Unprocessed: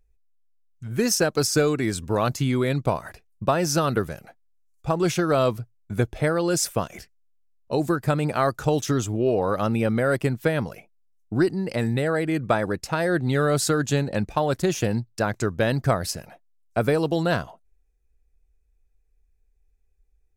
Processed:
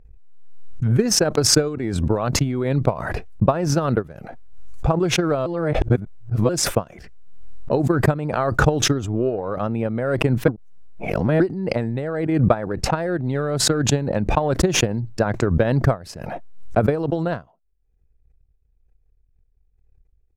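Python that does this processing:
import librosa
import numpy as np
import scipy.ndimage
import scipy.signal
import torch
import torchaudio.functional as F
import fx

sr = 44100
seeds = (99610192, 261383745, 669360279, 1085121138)

y = fx.edit(x, sr, fx.reverse_span(start_s=5.46, length_s=1.03),
    fx.reverse_span(start_s=10.48, length_s=0.92), tone=tone)
y = fx.transient(y, sr, attack_db=9, sustain_db=-10)
y = fx.lowpass(y, sr, hz=1000.0, slope=6)
y = fx.pre_swell(y, sr, db_per_s=33.0)
y = y * librosa.db_to_amplitude(-2.0)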